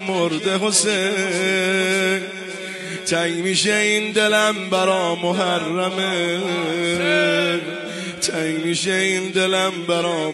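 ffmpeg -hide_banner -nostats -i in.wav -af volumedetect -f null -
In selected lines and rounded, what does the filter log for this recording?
mean_volume: -20.0 dB
max_volume: -5.0 dB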